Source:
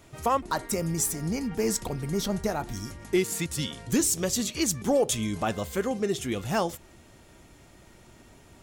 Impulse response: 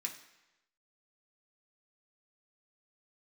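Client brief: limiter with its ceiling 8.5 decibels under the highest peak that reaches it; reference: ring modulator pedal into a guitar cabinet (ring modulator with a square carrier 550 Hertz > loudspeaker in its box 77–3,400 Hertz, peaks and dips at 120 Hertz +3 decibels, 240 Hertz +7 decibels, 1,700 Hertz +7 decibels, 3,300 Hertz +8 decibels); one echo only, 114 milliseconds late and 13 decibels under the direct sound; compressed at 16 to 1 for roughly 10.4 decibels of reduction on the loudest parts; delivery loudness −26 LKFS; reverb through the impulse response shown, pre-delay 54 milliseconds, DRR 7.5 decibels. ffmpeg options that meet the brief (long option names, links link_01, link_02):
-filter_complex "[0:a]acompressor=threshold=-29dB:ratio=16,alimiter=level_in=4dB:limit=-24dB:level=0:latency=1,volume=-4dB,aecho=1:1:114:0.224,asplit=2[link_01][link_02];[1:a]atrim=start_sample=2205,adelay=54[link_03];[link_02][link_03]afir=irnorm=-1:irlink=0,volume=-7dB[link_04];[link_01][link_04]amix=inputs=2:normalize=0,aeval=exprs='val(0)*sgn(sin(2*PI*550*n/s))':channel_layout=same,highpass=77,equalizer=frequency=120:width_type=q:width=4:gain=3,equalizer=frequency=240:width_type=q:width=4:gain=7,equalizer=frequency=1700:width_type=q:width=4:gain=7,equalizer=frequency=3300:width_type=q:width=4:gain=8,lowpass=frequency=3400:width=0.5412,lowpass=frequency=3400:width=1.3066,volume=9.5dB"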